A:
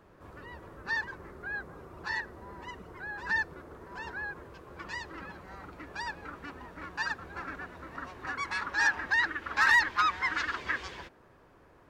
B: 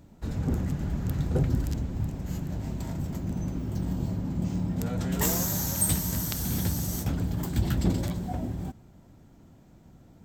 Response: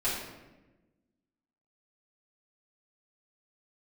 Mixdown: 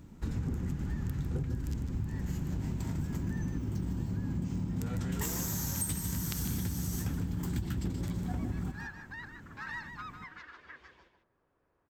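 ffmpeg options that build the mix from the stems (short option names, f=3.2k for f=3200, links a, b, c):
-filter_complex "[0:a]highshelf=f=4.6k:g=-8,volume=-17.5dB,asplit=2[a][b];[b]volume=-8dB[c];[1:a]equalizer=f=630:t=o:w=0.67:g=-10,equalizer=f=4k:t=o:w=0.67:g=-3,equalizer=f=16k:t=o:w=0.67:g=-5,volume=2dB,asplit=2[d][e];[e]volume=-11dB[f];[c][f]amix=inputs=2:normalize=0,aecho=0:1:152:1[g];[a][d][g]amix=inputs=3:normalize=0,acompressor=threshold=-30dB:ratio=10"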